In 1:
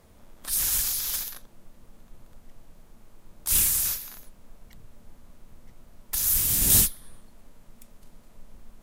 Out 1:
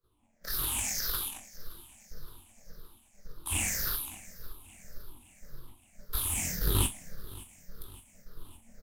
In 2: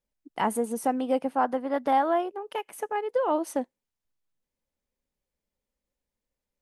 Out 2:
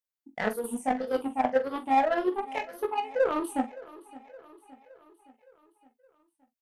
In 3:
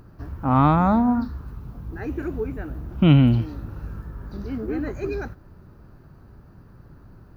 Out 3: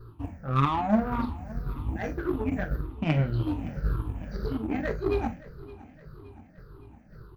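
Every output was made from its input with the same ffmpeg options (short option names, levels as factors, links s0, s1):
-filter_complex "[0:a]afftfilt=real='re*pow(10,19/40*sin(2*PI*(0.6*log(max(b,1)*sr/1024/100)/log(2)-(-1.8)*(pts-256)/sr)))':imag='im*pow(10,19/40*sin(2*PI*(0.6*log(max(b,1)*sr/1024/100)/log(2)-(-1.8)*(pts-256)/sr)))':win_size=1024:overlap=0.75,acrossover=split=2800[s0][s1];[s1]acompressor=threshold=0.0398:ratio=4:attack=1:release=60[s2];[s0][s2]amix=inputs=2:normalize=0,agate=range=0.0224:threshold=0.0112:ratio=3:detection=peak,areverse,acompressor=threshold=0.0501:ratio=5,areverse,flanger=delay=18.5:depth=4.7:speed=1,aeval=exprs='0.119*(cos(1*acos(clip(val(0)/0.119,-1,1)))-cos(1*PI/2))+0.0299*(cos(3*acos(clip(val(0)/0.119,-1,1)))-cos(3*PI/2))':c=same,asplit=2[s3][s4];[s4]asoftclip=type=hard:threshold=0.0224,volume=0.596[s5];[s3][s5]amix=inputs=2:normalize=0,asplit=2[s6][s7];[s7]adelay=44,volume=0.224[s8];[s6][s8]amix=inputs=2:normalize=0,aecho=1:1:567|1134|1701|2268|2835:0.106|0.0604|0.0344|0.0196|0.0112,volume=2.51" -ar 44100 -c:a nellymoser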